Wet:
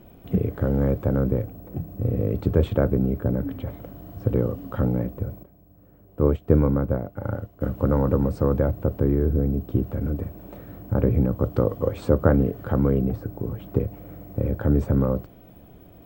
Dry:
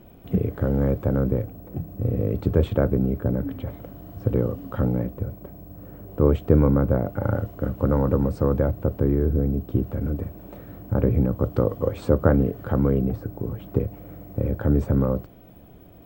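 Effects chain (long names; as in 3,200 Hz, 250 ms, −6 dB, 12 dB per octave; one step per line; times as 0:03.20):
0:05.43–0:07.61: expander for the loud parts 1.5 to 1, over −37 dBFS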